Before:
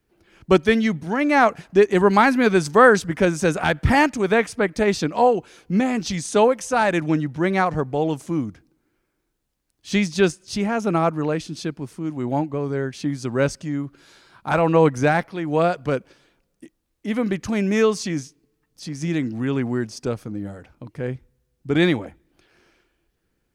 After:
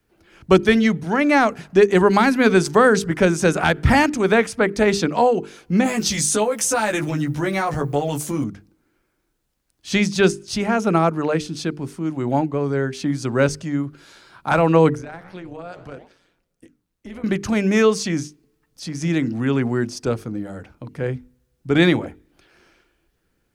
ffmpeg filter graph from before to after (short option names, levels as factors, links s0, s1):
-filter_complex "[0:a]asettb=1/sr,asplit=3[s0][s1][s2];[s0]atrim=end=5.844[s3];[s1]atrim=start=5.84:end=8.44,asetpts=PTS-STARTPTS,afade=t=in:d=0.004:c=qsin,afade=t=out:st=2.596:d=0.004:c=qsin,aemphasis=mode=production:type=50fm,acompressor=threshold=0.0891:ratio=12:attack=3.2:release=140:knee=1:detection=peak,asplit=2[s4][s5];[s5]adelay=14,volume=0.794[s6];[s4][s6]amix=inputs=2:normalize=0,atrim=end_sample=114660[s7];[s2]atrim=start=8.436[s8];[s3][s7]acrossfade=d=0.004:c1=hsin:c2=qsin[s9];[s9][s8]acrossfade=d=0.004:c1=qsin:c2=hsin,asettb=1/sr,asplit=3[s10][s11][s12];[s10]atrim=end=14.954[s13];[s11]atrim=start=14.95:end=17.24,asetpts=PTS-STARTPTS,afade=t=in:d=0.004:c=qsin,afade=t=out:st=2.286:d=0.004:c=qsin,flanger=delay=5.7:depth=9.8:regen=-85:speed=1.8:shape=triangular,acompressor=threshold=0.0282:ratio=16:attack=3.2:release=140:knee=1:detection=peak,tremolo=f=180:d=0.621[s14];[s12]atrim=start=17.236[s15];[s13][s14]acrossfade=d=0.004:c1=hsin:c2=qsin[s16];[s16][s15]acrossfade=d=0.004:c1=qsin:c2=hsin,equalizer=f=1400:w=7.3:g=2.5,bandreject=f=50:t=h:w=6,bandreject=f=100:t=h:w=6,bandreject=f=150:t=h:w=6,bandreject=f=200:t=h:w=6,bandreject=f=250:t=h:w=6,bandreject=f=300:t=h:w=6,bandreject=f=350:t=h:w=6,bandreject=f=400:t=h:w=6,bandreject=f=450:t=h:w=6,acrossover=split=400|3000[s17][s18][s19];[s18]acompressor=threshold=0.126:ratio=6[s20];[s17][s20][s19]amix=inputs=3:normalize=0,volume=1.5"